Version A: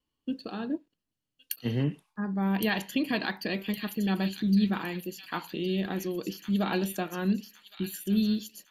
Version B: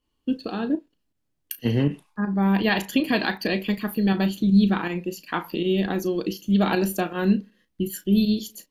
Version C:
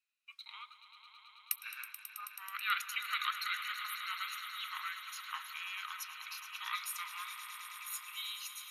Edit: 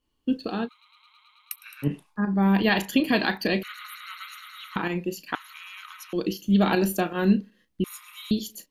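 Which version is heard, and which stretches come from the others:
B
0.66–1.85 s: from C, crossfade 0.06 s
3.63–4.76 s: from C
5.35–6.13 s: from C
7.84–8.31 s: from C
not used: A

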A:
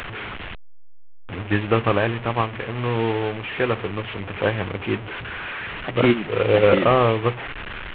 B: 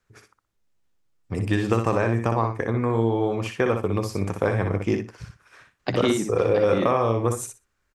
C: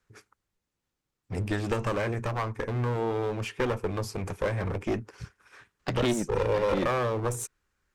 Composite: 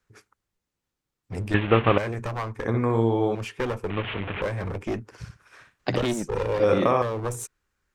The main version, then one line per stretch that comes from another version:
C
1.54–1.98 s: from A
2.65–3.35 s: from B
3.90–4.42 s: from A
5.12–5.98 s: from B
6.60–7.02 s: from B

